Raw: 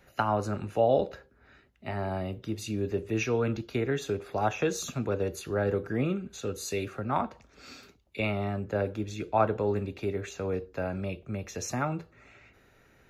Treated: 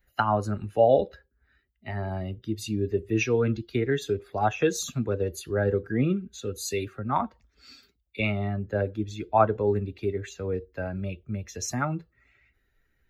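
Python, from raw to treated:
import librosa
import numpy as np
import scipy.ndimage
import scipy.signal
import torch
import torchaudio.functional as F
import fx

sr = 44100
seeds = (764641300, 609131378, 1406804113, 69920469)

y = fx.bin_expand(x, sr, power=1.5)
y = y * librosa.db_to_amplitude(6.0)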